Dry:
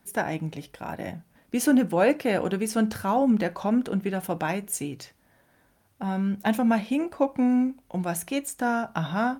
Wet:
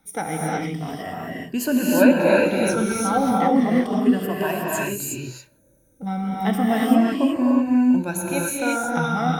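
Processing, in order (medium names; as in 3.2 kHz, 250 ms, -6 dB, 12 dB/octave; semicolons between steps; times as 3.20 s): drifting ripple filter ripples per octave 1.4, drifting -0.34 Hz, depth 14 dB; time-frequency box 5.22–6.07 s, 660–5800 Hz -17 dB; gated-style reverb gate 390 ms rising, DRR -4 dB; trim -2 dB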